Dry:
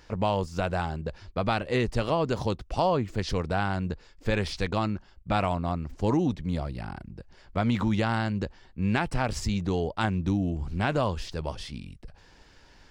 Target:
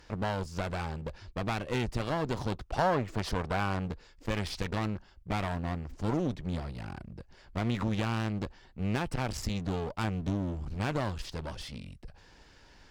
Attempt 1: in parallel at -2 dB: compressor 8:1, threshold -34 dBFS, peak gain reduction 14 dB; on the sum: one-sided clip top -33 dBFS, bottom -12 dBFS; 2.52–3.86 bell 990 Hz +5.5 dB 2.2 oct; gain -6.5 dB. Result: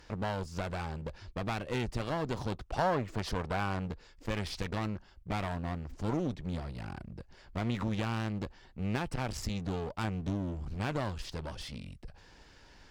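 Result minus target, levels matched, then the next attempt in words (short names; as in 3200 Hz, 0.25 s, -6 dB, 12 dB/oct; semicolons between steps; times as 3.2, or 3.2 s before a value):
compressor: peak gain reduction +10.5 dB
in parallel at -2 dB: compressor 8:1, threshold -22 dBFS, peak gain reduction 3.5 dB; on the sum: one-sided clip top -33 dBFS, bottom -12 dBFS; 2.52–3.86 bell 990 Hz +5.5 dB 2.2 oct; gain -6.5 dB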